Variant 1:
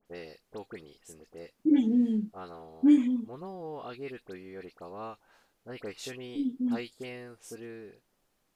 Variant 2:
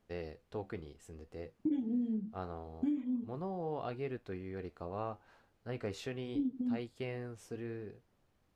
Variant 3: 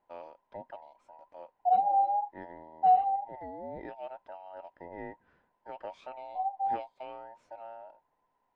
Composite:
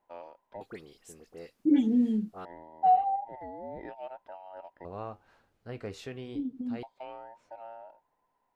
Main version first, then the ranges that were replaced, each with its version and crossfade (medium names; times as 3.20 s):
3
0.61–2.45 s: from 1
4.85–6.83 s: from 2